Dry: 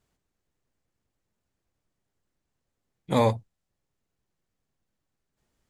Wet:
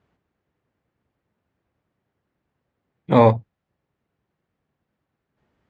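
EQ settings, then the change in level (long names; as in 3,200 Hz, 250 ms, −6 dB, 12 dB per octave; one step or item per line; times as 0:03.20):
high-pass filter 76 Hz
low-pass filter 2,300 Hz 12 dB per octave
+8.5 dB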